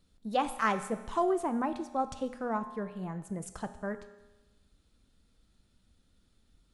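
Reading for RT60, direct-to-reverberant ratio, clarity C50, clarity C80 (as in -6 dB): 1.1 s, 9.5 dB, 12.5 dB, 14.0 dB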